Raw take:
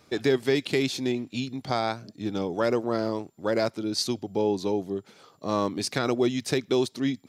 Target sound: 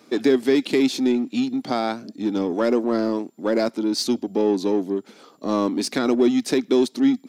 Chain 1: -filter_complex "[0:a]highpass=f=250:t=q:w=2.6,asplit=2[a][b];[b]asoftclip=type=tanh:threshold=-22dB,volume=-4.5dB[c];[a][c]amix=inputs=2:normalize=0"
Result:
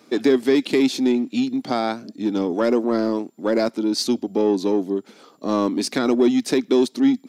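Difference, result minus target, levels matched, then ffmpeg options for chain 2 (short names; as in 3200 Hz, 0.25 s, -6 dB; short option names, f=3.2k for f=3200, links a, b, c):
soft clip: distortion -4 dB
-filter_complex "[0:a]highpass=f=250:t=q:w=2.6,asplit=2[a][b];[b]asoftclip=type=tanh:threshold=-29dB,volume=-4.5dB[c];[a][c]amix=inputs=2:normalize=0"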